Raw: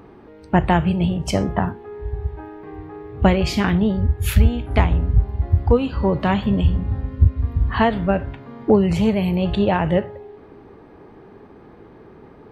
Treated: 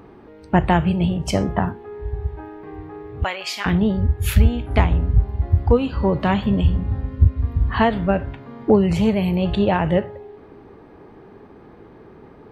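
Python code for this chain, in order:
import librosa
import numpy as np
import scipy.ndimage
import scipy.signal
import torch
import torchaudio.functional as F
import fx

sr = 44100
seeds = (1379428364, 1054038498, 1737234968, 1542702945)

y = fx.highpass(x, sr, hz=1000.0, slope=12, at=(3.24, 3.66))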